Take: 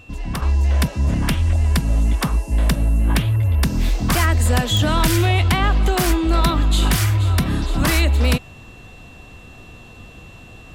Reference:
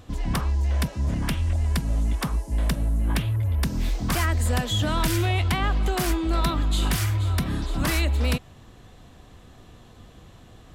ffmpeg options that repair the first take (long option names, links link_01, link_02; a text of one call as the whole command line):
ffmpeg -i in.wav -af "adeclick=threshold=4,bandreject=frequency=2700:width=30,asetnsamples=nb_out_samples=441:pad=0,asendcmd='0.42 volume volume -6.5dB',volume=0dB" out.wav